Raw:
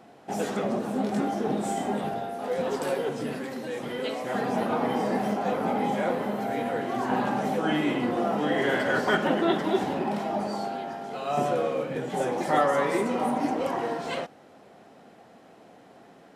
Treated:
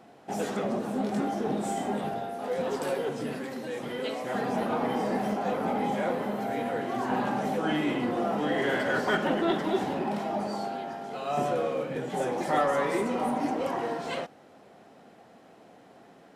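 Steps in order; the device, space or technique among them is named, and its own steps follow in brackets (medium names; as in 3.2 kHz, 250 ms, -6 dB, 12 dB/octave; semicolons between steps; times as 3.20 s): parallel distortion (in parallel at -10 dB: hard clipper -24 dBFS, distortion -11 dB); on the sum: trim -4 dB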